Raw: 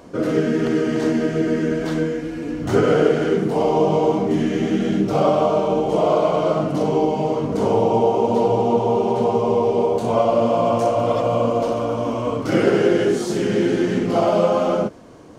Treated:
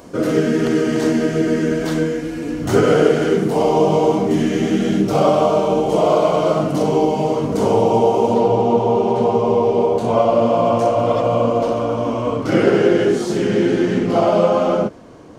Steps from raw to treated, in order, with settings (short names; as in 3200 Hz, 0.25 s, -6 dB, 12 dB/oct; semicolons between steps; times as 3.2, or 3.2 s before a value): high shelf 6500 Hz +9 dB, from 8.34 s -5 dB; gain +2.5 dB